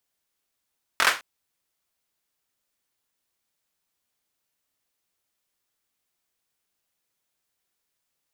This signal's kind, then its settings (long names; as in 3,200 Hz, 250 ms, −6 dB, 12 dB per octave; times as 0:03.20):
synth clap length 0.21 s, bursts 4, apart 23 ms, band 1,400 Hz, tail 0.27 s